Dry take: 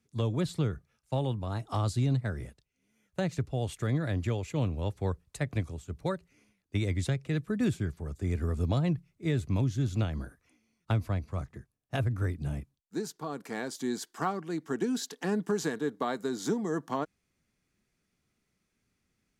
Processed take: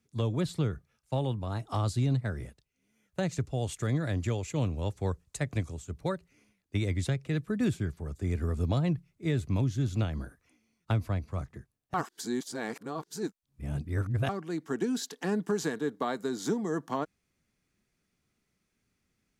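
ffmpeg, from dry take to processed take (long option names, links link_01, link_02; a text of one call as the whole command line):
ffmpeg -i in.wav -filter_complex "[0:a]asettb=1/sr,asplit=3[link_01][link_02][link_03];[link_01]atrim=end=3.234[link_04];[link_02]atrim=start=3.23:end=5.92,asetpts=PTS-STARTPTS,afade=type=in:duration=0.004:curve=qsin,afade=type=out:start_time=2.686:duration=0.004:curve=qsin,equalizer=frequency=7000:width=1.5:gain=6.5[link_05];[link_03]atrim=start=5.916[link_06];[link_04][link_05]acrossfade=duration=0.004:curve1=hsin:curve2=qsin[link_07];[link_07][link_06]acrossfade=duration=0.004:curve1=qsin:curve2=hsin,asplit=3[link_08][link_09][link_10];[link_08]atrim=end=11.942[link_11];[link_09]atrim=start=11.938:end=14.292,asetpts=PTS-STARTPTS,areverse[link_12];[link_10]atrim=start=14.288[link_13];[link_11][link_12]acrossfade=duration=0.004:curve1=hsin:curve2=hsin[link_14];[link_14][link_13]acrossfade=duration=0.004:curve1=hsin:curve2=hsin" out.wav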